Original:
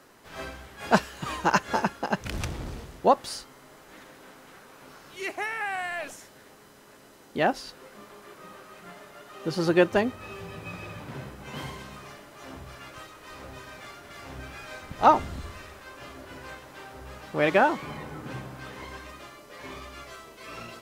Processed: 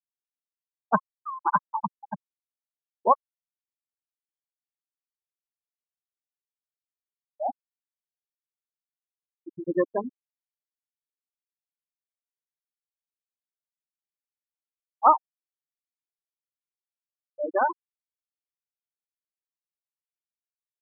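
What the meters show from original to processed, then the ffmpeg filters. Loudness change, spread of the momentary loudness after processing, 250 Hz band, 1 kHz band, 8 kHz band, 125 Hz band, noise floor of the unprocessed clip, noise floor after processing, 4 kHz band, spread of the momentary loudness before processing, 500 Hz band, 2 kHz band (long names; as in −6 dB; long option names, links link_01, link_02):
+1.5 dB, 20 LU, −7.5 dB, 0.0 dB, below −35 dB, −12.5 dB, −53 dBFS, below −85 dBFS, below −40 dB, 22 LU, −5.0 dB, −10.5 dB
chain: -af "equalizer=frequency=1100:width_type=o:width=0.48:gain=10.5,afftfilt=real='re*gte(hypot(re,im),0.447)':imag='im*gte(hypot(re,im),0.447)':win_size=1024:overlap=0.75,volume=-4dB"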